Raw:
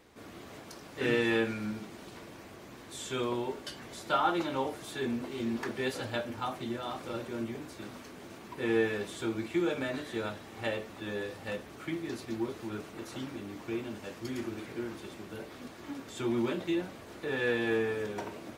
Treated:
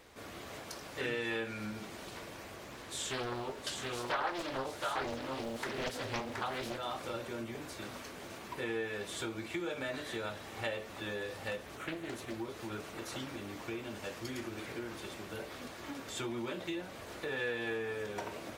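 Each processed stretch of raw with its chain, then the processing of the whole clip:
0:02.64–0:06.78: single-tap delay 722 ms −5 dB + highs frequency-modulated by the lows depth 0.88 ms
0:11.77–0:12.34: parametric band 4,800 Hz −12 dB 0.31 octaves + highs frequency-modulated by the lows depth 0.43 ms
whole clip: parametric band 540 Hz +3.5 dB 0.67 octaves; downward compressor 2.5 to 1, threshold −37 dBFS; parametric band 260 Hz −7 dB 2.7 octaves; level +4 dB

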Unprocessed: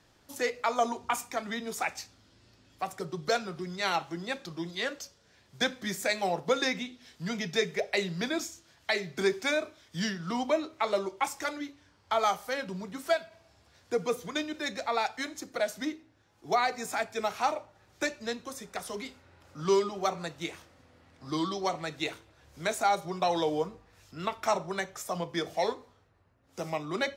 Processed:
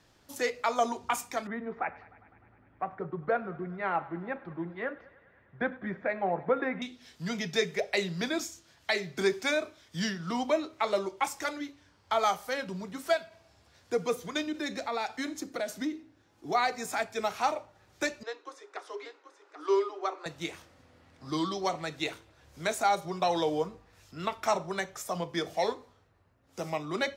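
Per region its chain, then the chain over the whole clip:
0:01.47–0:06.82: inverse Chebyshev low-pass filter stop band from 9,400 Hz, stop band 80 dB + feedback echo with a high-pass in the loop 101 ms, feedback 79%, high-pass 310 Hz, level −20.5 dB
0:14.47–0:16.55: parametric band 290 Hz +7 dB 0.71 octaves + downward compressor 2.5 to 1, threshold −30 dBFS
0:18.23–0:20.26: Chebyshev high-pass with heavy ripple 290 Hz, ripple 6 dB + high-frequency loss of the air 97 metres + single-tap delay 784 ms −10.5 dB
whole clip: no processing

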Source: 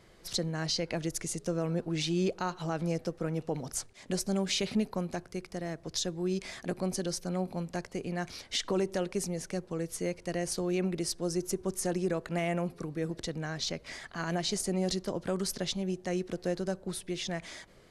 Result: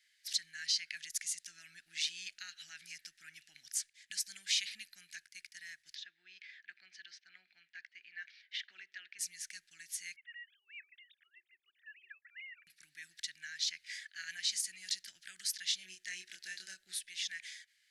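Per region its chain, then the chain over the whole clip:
0:05.95–0:09.19: band-pass filter 330–2,900 Hz + high-frequency loss of the air 110 metres
0:10.16–0:12.67: three sine waves on the formant tracks + high-pass filter 890 Hz + downward compressor 16 to 1, threshold −39 dBFS
0:15.67–0:16.99: parametric band 460 Hz +14.5 dB 0.9 octaves + double-tracking delay 27 ms −3 dB
whole clip: noise gate −44 dBFS, range −6 dB; elliptic high-pass filter 1,700 Hz, stop band 40 dB

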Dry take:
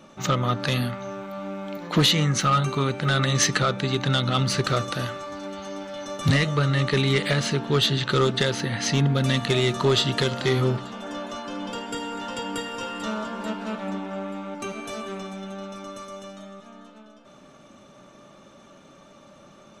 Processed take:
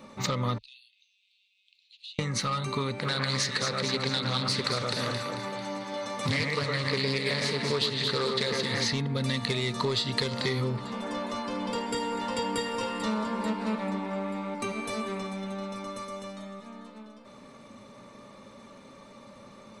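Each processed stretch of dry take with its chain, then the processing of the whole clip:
0:00.58–0:02.19: downward compressor 4 to 1, threshold −31 dBFS + Chebyshev high-pass with heavy ripple 2,600 Hz, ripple 3 dB + head-to-tape spacing loss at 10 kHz 27 dB
0:02.99–0:08.93: high-pass filter 180 Hz 6 dB per octave + delay that swaps between a low-pass and a high-pass 111 ms, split 2,400 Hz, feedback 67%, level −3 dB + highs frequency-modulated by the lows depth 0.29 ms
whole clip: dynamic equaliser 5,000 Hz, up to +5 dB, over −39 dBFS, Q 1; downward compressor, threshold −26 dBFS; EQ curve with evenly spaced ripples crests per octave 0.94, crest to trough 8 dB

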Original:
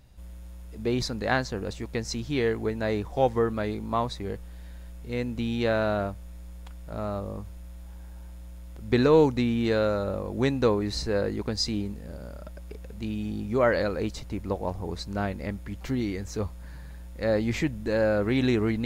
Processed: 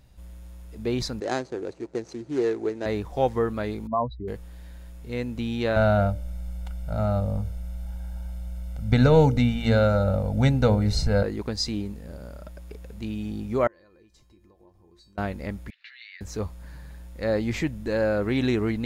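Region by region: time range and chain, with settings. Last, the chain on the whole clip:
0:01.20–0:02.86: running median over 25 samples + loudspeaker in its box 190–9,200 Hz, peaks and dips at 200 Hz −10 dB, 360 Hz +8 dB, 1,100 Hz −4 dB, 3,000 Hz −6 dB, 6,500 Hz +4 dB
0:03.87–0:04.28: expanding power law on the bin magnitudes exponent 2.3 + low-pass filter 1,200 Hz 6 dB per octave + dynamic equaliser 760 Hz, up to +4 dB, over −38 dBFS, Q 0.71
0:05.76–0:11.23: low-shelf EQ 240 Hz +9 dB + comb filter 1.4 ms, depth 86% + hum removal 58.46 Hz, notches 10
0:13.67–0:15.18: downward compressor 20 to 1, threshold −35 dBFS + tuned comb filter 350 Hz, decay 0.28 s, harmonics odd, mix 90%
0:15.70–0:16.21: elliptic band-pass filter 1,700–4,100 Hz, stop band 80 dB + notch filter 3,200 Hz, Q 10
whole clip: no processing

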